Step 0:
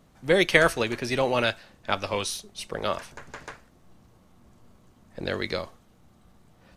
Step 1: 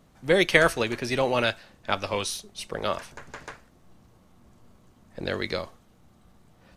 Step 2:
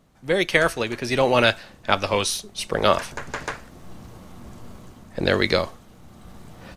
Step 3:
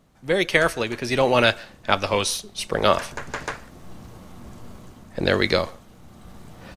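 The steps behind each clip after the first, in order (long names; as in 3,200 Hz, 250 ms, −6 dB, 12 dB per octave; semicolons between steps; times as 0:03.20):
no processing that can be heard
automatic gain control gain up to 16 dB; level −1 dB
far-end echo of a speakerphone 140 ms, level −25 dB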